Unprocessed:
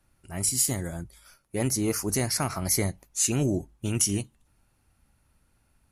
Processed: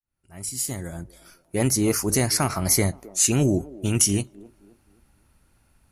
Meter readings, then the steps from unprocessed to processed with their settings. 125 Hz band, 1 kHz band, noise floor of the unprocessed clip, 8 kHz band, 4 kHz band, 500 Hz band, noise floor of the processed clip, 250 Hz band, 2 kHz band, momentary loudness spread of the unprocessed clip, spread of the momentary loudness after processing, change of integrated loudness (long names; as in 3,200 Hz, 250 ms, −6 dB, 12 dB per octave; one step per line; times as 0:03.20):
+4.5 dB, +5.0 dB, −69 dBFS, +3.5 dB, +4.0 dB, +5.0 dB, −65 dBFS, +5.0 dB, +4.5 dB, 13 LU, 14 LU, +4.0 dB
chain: fade in at the beginning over 1.63 s
on a send: delay with a band-pass on its return 263 ms, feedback 37%, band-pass 500 Hz, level −17.5 dB
on the sum: level +5 dB